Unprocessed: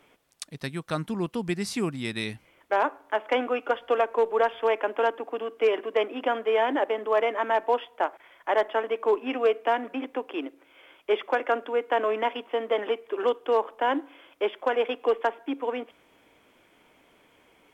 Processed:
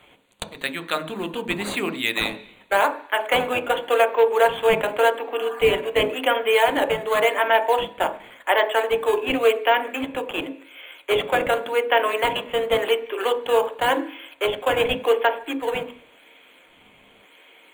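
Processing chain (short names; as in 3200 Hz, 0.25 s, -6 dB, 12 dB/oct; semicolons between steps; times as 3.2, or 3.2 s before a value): weighting filter D; spectral repair 5.41–5.68, 650–1800 Hz; tone controls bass -11 dB, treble -3 dB; notches 50/100/150/200/250/300/350 Hz; in parallel at -5.5 dB: decimation with a swept rate 12×, swing 160% 0.9 Hz; on the sum: Butterworth band-stop 5300 Hz, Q 1.9; on a send at -6 dB: reverb RT60 0.50 s, pre-delay 3 ms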